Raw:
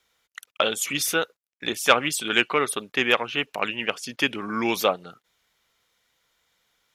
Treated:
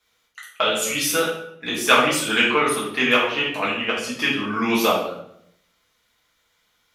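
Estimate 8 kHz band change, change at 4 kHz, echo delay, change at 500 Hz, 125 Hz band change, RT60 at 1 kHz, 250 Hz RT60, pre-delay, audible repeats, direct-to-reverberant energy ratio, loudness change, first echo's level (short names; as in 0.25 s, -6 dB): +3.0 dB, +3.5 dB, none, +3.5 dB, +4.0 dB, 0.65 s, 0.85 s, 4 ms, none, -8.0 dB, +3.5 dB, none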